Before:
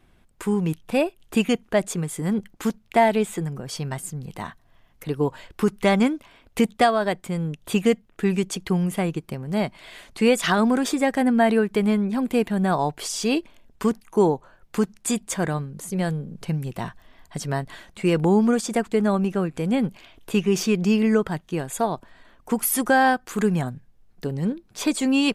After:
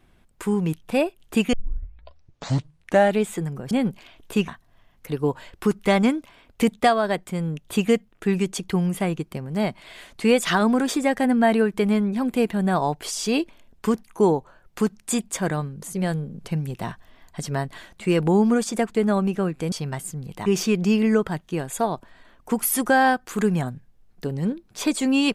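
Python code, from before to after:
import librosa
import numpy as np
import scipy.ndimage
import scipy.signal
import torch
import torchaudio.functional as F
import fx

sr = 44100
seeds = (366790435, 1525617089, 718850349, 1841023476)

y = fx.edit(x, sr, fx.tape_start(start_s=1.53, length_s=1.68),
    fx.swap(start_s=3.71, length_s=0.74, other_s=19.69, other_length_s=0.77), tone=tone)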